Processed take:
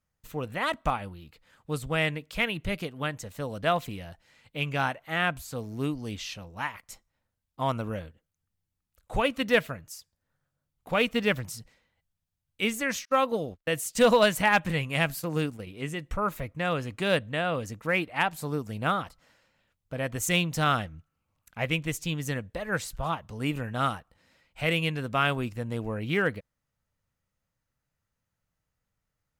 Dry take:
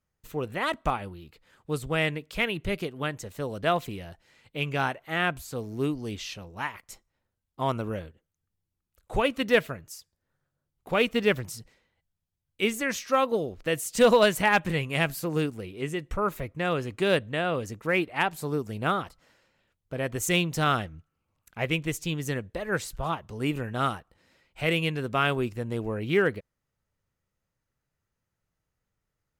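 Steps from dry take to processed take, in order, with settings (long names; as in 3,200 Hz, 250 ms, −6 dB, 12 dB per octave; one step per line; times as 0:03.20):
0:13.05–0:15.67: noise gate −36 dBFS, range −38 dB
parametric band 380 Hz −8 dB 0.37 octaves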